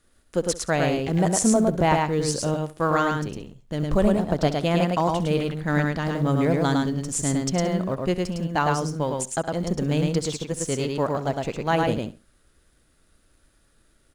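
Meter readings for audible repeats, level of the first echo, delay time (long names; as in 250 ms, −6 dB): 4, −16.0 dB, 67 ms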